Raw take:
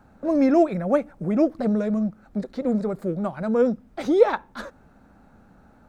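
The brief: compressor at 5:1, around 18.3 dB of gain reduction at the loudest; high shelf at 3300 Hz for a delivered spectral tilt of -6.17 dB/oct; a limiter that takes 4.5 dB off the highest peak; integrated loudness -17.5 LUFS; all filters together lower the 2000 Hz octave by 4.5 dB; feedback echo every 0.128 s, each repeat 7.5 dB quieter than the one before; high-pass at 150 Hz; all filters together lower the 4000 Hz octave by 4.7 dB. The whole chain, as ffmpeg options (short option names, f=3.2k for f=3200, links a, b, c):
-af "highpass=150,equalizer=f=2k:t=o:g=-6,highshelf=f=3.3k:g=3,equalizer=f=4k:t=o:g=-6,acompressor=threshold=-32dB:ratio=5,alimiter=level_in=4dB:limit=-24dB:level=0:latency=1,volume=-4dB,aecho=1:1:128|256|384|512|640:0.422|0.177|0.0744|0.0312|0.0131,volume=18.5dB"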